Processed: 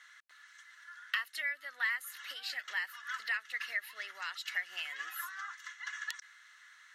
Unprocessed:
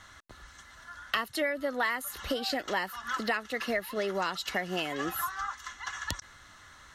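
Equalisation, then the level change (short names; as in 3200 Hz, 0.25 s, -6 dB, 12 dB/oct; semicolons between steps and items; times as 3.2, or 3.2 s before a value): resonant high-pass 1800 Hz, resonance Q 2.3; -8.0 dB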